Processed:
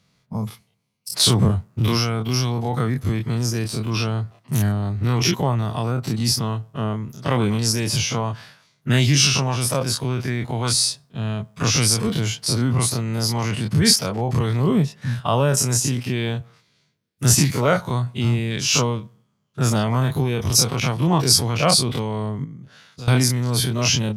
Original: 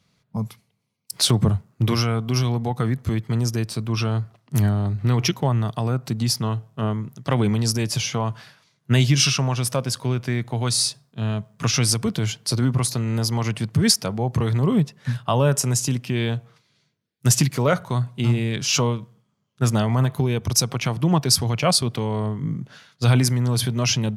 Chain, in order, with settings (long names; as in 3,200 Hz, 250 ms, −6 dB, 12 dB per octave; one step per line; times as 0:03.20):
every bin's largest magnitude spread in time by 60 ms
0:22.44–0:23.08: downward compressor 2.5 to 1, threshold −38 dBFS, peak gain reduction 17 dB
level −2 dB